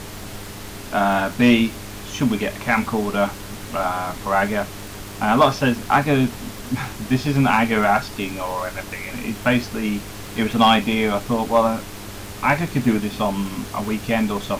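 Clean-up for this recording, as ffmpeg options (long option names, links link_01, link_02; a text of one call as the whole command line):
ffmpeg -i in.wav -af "adeclick=threshold=4,bandreject=frequency=101.6:width_type=h:width=4,bandreject=frequency=203.2:width_type=h:width=4,bandreject=frequency=304.8:width_type=h:width=4,bandreject=frequency=406.4:width_type=h:width=4,afftdn=noise_reduction=30:noise_floor=-34" out.wav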